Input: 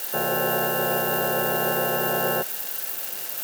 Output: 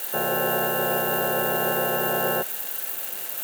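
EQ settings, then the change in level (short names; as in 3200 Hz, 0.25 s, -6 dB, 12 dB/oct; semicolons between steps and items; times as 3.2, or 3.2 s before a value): bell 66 Hz -8 dB 1.2 oct; bell 5200 Hz -7 dB 0.44 oct; 0.0 dB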